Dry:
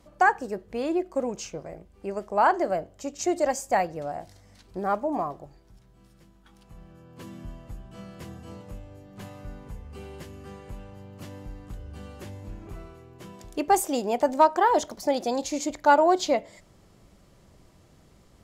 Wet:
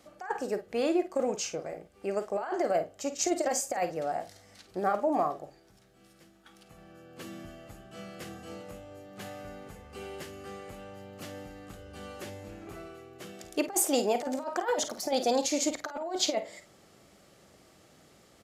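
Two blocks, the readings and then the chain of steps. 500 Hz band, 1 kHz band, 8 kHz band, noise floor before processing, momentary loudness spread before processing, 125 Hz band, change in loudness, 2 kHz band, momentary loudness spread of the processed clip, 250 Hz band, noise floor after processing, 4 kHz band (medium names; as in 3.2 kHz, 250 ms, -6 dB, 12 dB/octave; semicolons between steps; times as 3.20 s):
-4.0 dB, -9.5 dB, +3.5 dB, -57 dBFS, 23 LU, -7.0 dB, -6.0 dB, -9.0 dB, 19 LU, -3.0 dB, -60 dBFS, +3.0 dB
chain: high-pass 410 Hz 6 dB/octave; band-stop 990 Hz, Q 7.2; compressor with a negative ratio -27 dBFS, ratio -0.5; early reflections 39 ms -15.5 dB, 51 ms -12 dB; resampled via 32 kHz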